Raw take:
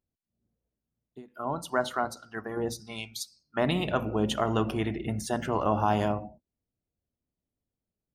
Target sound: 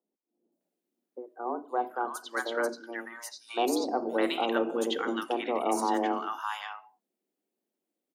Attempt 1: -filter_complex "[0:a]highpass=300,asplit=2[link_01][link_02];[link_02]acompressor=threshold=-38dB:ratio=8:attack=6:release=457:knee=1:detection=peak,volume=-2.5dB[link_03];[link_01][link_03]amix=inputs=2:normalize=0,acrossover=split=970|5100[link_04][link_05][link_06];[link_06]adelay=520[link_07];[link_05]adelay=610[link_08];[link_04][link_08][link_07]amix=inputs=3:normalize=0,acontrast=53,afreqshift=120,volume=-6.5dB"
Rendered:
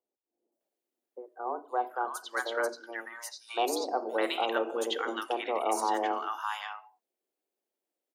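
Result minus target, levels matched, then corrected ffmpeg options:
125 Hz band −11.5 dB
-filter_complex "[0:a]highpass=130,asplit=2[link_01][link_02];[link_02]acompressor=threshold=-38dB:ratio=8:attack=6:release=457:knee=1:detection=peak,volume=-2.5dB[link_03];[link_01][link_03]amix=inputs=2:normalize=0,acrossover=split=970|5100[link_04][link_05][link_06];[link_06]adelay=520[link_07];[link_05]adelay=610[link_08];[link_04][link_08][link_07]amix=inputs=3:normalize=0,acontrast=53,afreqshift=120,volume=-6.5dB"

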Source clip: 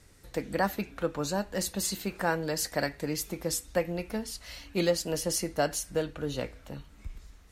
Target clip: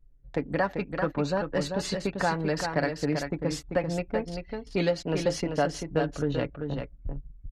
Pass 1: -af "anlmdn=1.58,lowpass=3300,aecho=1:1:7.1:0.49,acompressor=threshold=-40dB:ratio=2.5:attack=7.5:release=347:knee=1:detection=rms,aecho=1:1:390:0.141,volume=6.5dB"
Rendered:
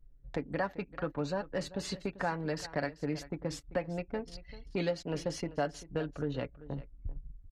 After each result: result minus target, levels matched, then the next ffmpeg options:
echo-to-direct −11 dB; downward compressor: peak gain reduction +6.5 dB
-af "anlmdn=1.58,lowpass=3300,aecho=1:1:7.1:0.49,acompressor=threshold=-40dB:ratio=2.5:attack=7.5:release=347:knee=1:detection=rms,aecho=1:1:390:0.501,volume=6.5dB"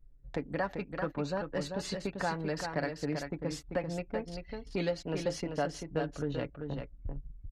downward compressor: peak gain reduction +6.5 dB
-af "anlmdn=1.58,lowpass=3300,aecho=1:1:7.1:0.49,acompressor=threshold=-29dB:ratio=2.5:attack=7.5:release=347:knee=1:detection=rms,aecho=1:1:390:0.501,volume=6.5dB"

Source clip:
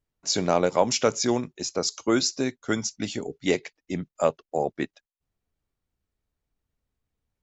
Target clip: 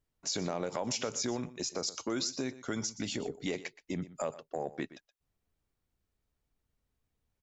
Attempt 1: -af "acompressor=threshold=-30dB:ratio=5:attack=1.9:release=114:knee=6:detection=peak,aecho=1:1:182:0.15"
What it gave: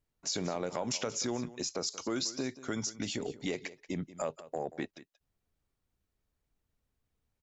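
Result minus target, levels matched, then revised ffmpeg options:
echo 60 ms late
-af "acompressor=threshold=-30dB:ratio=5:attack=1.9:release=114:knee=6:detection=peak,aecho=1:1:122:0.15"

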